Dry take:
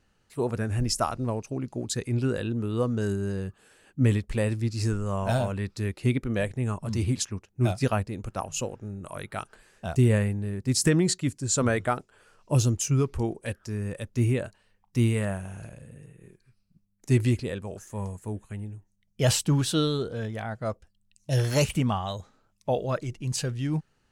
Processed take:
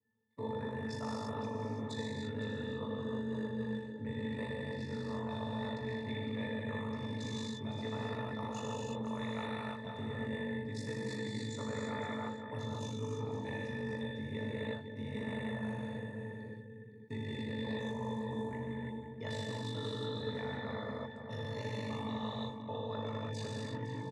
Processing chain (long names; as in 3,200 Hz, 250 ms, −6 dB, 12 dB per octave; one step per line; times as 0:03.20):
reverb whose tail is shaped and stops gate 370 ms flat, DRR −4.5 dB
reversed playback
downward compressor 10 to 1, threshold −31 dBFS, peak gain reduction 19 dB
reversed playback
noise gate −50 dBFS, range −27 dB
ring modulation 25 Hz
high-pass filter 120 Hz 24 dB per octave
resonances in every octave A, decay 0.2 s
on a send: single-tap delay 510 ms −13 dB
on the sum: every bin compressed towards the loudest bin 2 to 1
level +8 dB